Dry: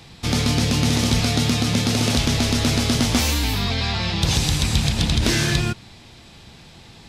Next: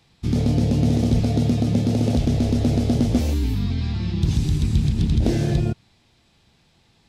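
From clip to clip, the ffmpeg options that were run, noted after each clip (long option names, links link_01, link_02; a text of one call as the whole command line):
ffmpeg -i in.wav -af "afwtdn=0.0891,volume=1.5dB" out.wav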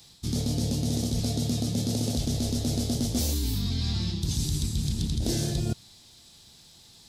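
ffmpeg -i in.wav -af "areverse,acompressor=threshold=-25dB:ratio=6,areverse,aexciter=amount=5.9:drive=2.8:freq=3500" out.wav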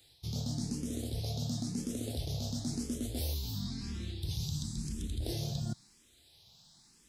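ffmpeg -i in.wav -filter_complex "[0:a]asplit=2[link_01][link_02];[link_02]afreqshift=0.97[link_03];[link_01][link_03]amix=inputs=2:normalize=1,volume=-6dB" out.wav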